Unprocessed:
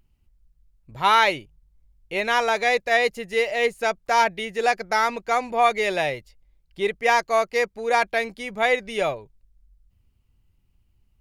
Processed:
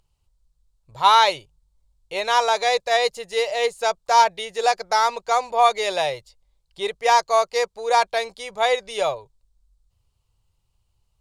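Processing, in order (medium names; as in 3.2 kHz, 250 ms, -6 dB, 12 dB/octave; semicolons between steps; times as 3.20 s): graphic EQ 125/250/500/1000/2000/4000/8000 Hz +4/-11/+7/+10/-4/+10/+11 dB; trim -5.5 dB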